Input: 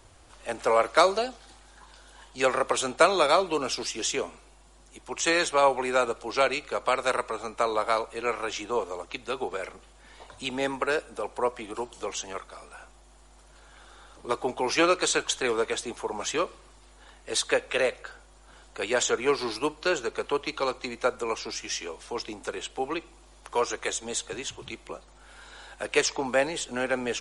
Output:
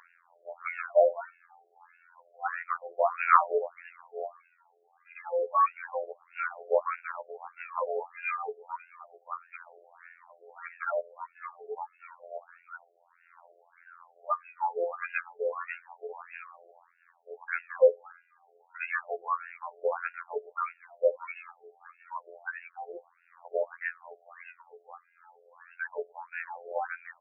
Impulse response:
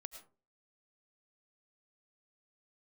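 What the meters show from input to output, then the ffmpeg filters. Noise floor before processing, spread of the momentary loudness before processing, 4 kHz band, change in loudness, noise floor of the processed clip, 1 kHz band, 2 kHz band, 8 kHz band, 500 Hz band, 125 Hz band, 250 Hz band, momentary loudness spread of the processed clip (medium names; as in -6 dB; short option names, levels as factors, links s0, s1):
-54 dBFS, 14 LU, under -35 dB, -4.5 dB, -68 dBFS, -3.0 dB, -6.0 dB, under -40 dB, -4.5 dB, under -40 dB, under -25 dB, 23 LU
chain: -filter_complex "[0:a]aphaser=in_gain=1:out_gain=1:delay=2.5:decay=0.74:speed=0.3:type=sinusoidal,acrossover=split=1200[s0][s1];[s1]acompressor=mode=upward:threshold=0.00355:ratio=2.5[s2];[s0][s2]amix=inputs=2:normalize=0,afftfilt=real='hypot(re,im)*cos(PI*b)':imag='0':win_size=2048:overlap=0.75,afftfilt=real='re*between(b*sr/1024,520*pow(2000/520,0.5+0.5*sin(2*PI*1.6*pts/sr))/1.41,520*pow(2000/520,0.5+0.5*sin(2*PI*1.6*pts/sr))*1.41)':imag='im*between(b*sr/1024,520*pow(2000/520,0.5+0.5*sin(2*PI*1.6*pts/sr))/1.41,520*pow(2000/520,0.5+0.5*sin(2*PI*1.6*pts/sr))*1.41)':win_size=1024:overlap=0.75"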